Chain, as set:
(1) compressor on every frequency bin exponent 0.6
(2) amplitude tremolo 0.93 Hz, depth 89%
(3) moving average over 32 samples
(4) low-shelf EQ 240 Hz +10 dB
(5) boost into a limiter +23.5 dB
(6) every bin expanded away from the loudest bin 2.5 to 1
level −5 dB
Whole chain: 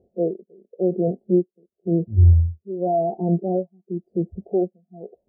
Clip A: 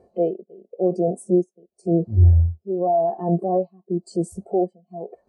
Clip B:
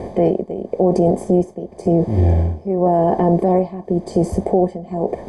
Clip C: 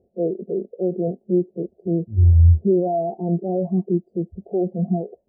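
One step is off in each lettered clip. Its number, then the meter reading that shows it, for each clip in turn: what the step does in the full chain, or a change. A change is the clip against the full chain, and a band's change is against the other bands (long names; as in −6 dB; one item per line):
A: 3, change in momentary loudness spread −3 LU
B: 6, change in crest factor −4.5 dB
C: 2, change in momentary loudness spread −4 LU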